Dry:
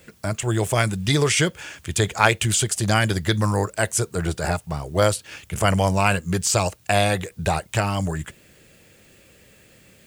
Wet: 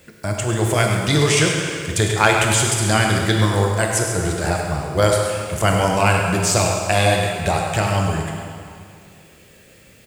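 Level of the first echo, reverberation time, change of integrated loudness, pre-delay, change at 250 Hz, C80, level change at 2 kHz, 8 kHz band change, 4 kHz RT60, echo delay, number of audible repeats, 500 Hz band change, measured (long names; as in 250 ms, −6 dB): −10.0 dB, 2.3 s, +3.5 dB, 17 ms, +3.0 dB, 2.0 dB, +4.0 dB, +3.5 dB, 1.9 s, 101 ms, 2, +4.0 dB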